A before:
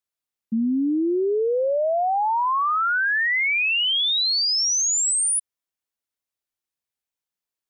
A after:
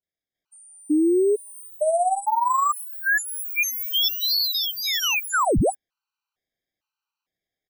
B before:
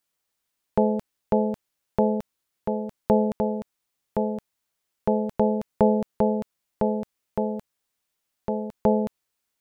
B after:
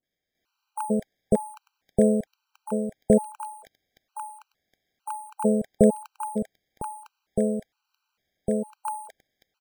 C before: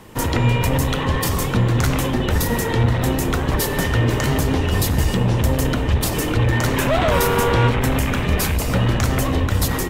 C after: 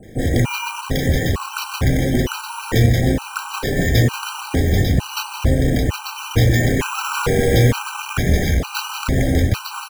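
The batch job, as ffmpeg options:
ffmpeg -i in.wav -filter_complex "[0:a]acrossover=split=850|5300[link_01][link_02][link_03];[link_02]adelay=30[link_04];[link_03]adelay=350[link_05];[link_01][link_04][link_05]amix=inputs=3:normalize=0,acrusher=samples=5:mix=1:aa=0.000001,afftfilt=real='re*gt(sin(2*PI*1.1*pts/sr)*(1-2*mod(floor(b*sr/1024/780),2)),0)':imag='im*gt(sin(2*PI*1.1*pts/sr)*(1-2*mod(floor(b*sr/1024/780),2)),0)':win_size=1024:overlap=0.75,volume=3.5dB" out.wav

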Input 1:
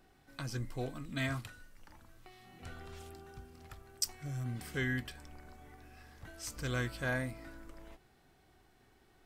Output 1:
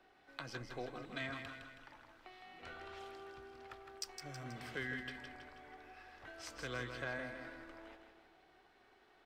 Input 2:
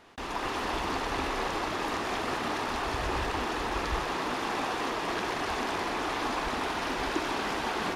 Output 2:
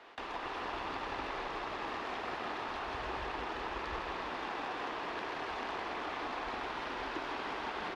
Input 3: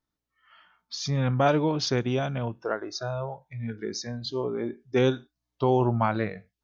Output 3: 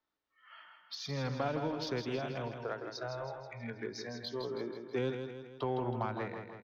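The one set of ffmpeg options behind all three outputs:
ffmpeg -i in.wav -filter_complex "[0:a]acrossover=split=330 4600:gain=0.158 1 0.126[link_01][link_02][link_03];[link_01][link_02][link_03]amix=inputs=3:normalize=0,acrossover=split=190[link_04][link_05];[link_05]acompressor=threshold=-46dB:ratio=2.5[link_06];[link_04][link_06]amix=inputs=2:normalize=0,aeval=exprs='0.0531*(cos(1*acos(clip(val(0)/0.0531,-1,1)))-cos(1*PI/2))+0.00168*(cos(7*acos(clip(val(0)/0.0531,-1,1)))-cos(7*PI/2))':channel_layout=same,asplit=2[link_07][link_08];[link_08]aecho=0:1:161|322|483|644|805|966:0.447|0.232|0.121|0.0628|0.0327|0.017[link_09];[link_07][link_09]amix=inputs=2:normalize=0,volume=4dB" out.wav

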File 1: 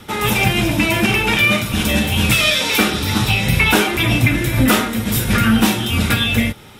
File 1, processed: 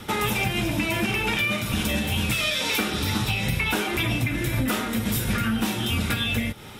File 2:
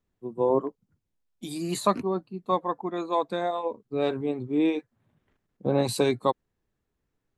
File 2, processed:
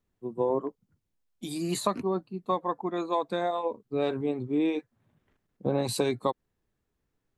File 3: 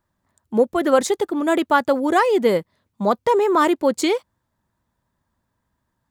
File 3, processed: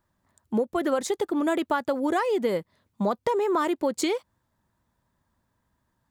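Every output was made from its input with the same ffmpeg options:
ffmpeg -i in.wav -af "acompressor=threshold=-22dB:ratio=6" out.wav

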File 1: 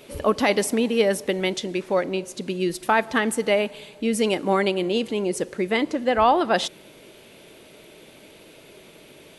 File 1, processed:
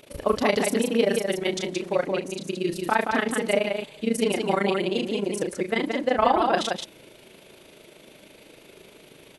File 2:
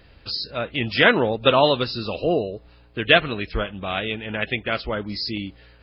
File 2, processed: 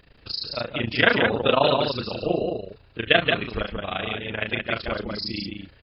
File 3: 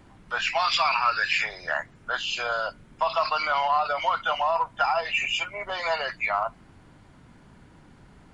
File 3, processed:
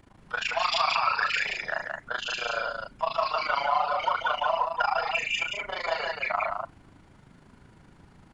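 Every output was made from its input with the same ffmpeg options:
ffmpeg -i in.wav -af "tremolo=f=26:d=0.919,aecho=1:1:34.99|174.9:0.447|0.631" out.wav

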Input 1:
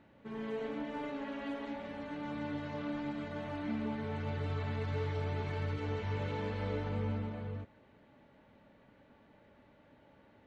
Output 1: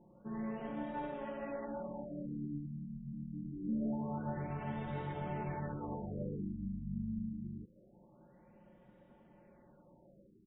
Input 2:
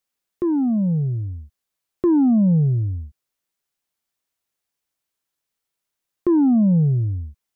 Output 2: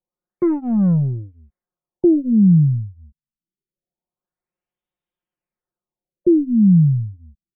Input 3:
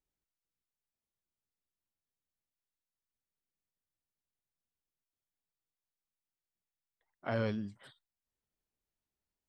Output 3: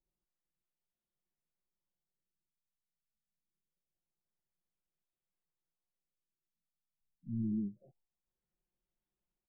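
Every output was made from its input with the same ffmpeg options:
ffmpeg -i in.wav -filter_complex "[0:a]aecho=1:1:5.6:0.9,asplit=2[link_01][link_02];[link_02]adynamicsmooth=sensitivity=2:basefreq=1100,volume=2dB[link_03];[link_01][link_03]amix=inputs=2:normalize=0,aeval=exprs='1*(cos(1*acos(clip(val(0)/1,-1,1)))-cos(1*PI/2))+0.0355*(cos(2*acos(clip(val(0)/1,-1,1)))-cos(2*PI/2))+0.0282*(cos(8*acos(clip(val(0)/1,-1,1)))-cos(8*PI/2))':channel_layout=same,afftfilt=real='re*lt(b*sr/1024,250*pow(3900/250,0.5+0.5*sin(2*PI*0.25*pts/sr)))':imag='im*lt(b*sr/1024,250*pow(3900/250,0.5+0.5*sin(2*PI*0.25*pts/sr)))':win_size=1024:overlap=0.75,volume=-7.5dB" out.wav

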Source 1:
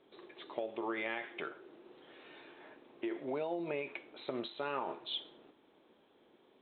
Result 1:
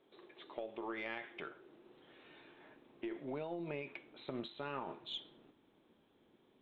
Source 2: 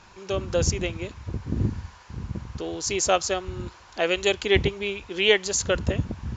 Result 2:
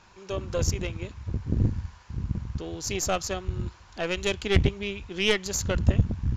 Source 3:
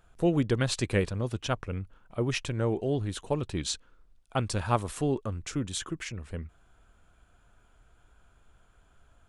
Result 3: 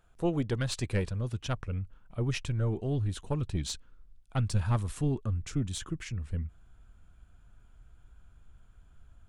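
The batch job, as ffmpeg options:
ffmpeg -i in.wav -af "asubboost=boost=3:cutoff=250,aeval=exprs='0.891*(cos(1*acos(clip(val(0)/0.891,-1,1)))-cos(1*PI/2))+0.1*(cos(6*acos(clip(val(0)/0.891,-1,1)))-cos(6*PI/2))':channel_layout=same,volume=-4.5dB" out.wav

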